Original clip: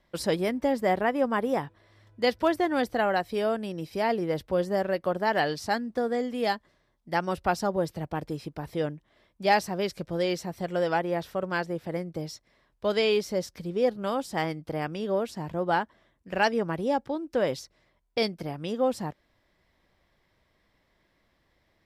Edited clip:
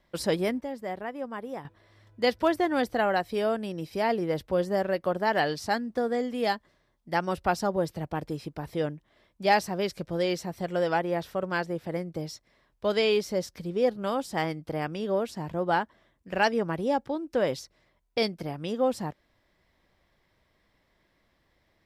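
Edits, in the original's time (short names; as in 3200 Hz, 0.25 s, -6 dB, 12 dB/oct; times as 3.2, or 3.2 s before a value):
0.61–1.65 gain -10 dB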